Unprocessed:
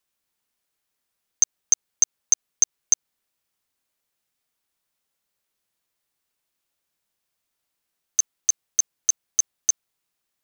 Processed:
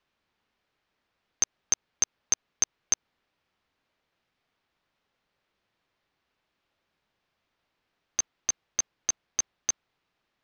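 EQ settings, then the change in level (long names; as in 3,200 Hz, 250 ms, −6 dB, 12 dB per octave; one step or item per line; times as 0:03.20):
high-frequency loss of the air 240 metres
+9.0 dB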